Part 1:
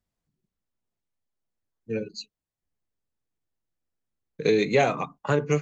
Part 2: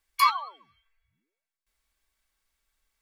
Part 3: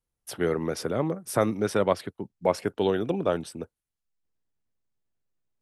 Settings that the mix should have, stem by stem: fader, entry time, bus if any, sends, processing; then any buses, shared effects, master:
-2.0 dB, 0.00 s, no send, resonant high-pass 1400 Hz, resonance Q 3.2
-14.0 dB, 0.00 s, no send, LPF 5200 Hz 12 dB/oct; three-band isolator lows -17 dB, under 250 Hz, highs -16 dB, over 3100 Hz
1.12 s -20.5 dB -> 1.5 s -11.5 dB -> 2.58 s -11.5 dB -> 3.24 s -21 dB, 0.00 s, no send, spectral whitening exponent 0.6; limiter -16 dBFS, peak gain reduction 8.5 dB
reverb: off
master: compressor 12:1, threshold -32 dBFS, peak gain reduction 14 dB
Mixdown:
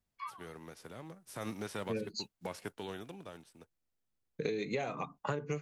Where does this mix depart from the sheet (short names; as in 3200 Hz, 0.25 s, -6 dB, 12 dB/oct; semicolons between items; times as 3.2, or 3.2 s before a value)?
stem 1: missing resonant high-pass 1400 Hz, resonance Q 3.2; stem 2 -14.0 dB -> -22.0 dB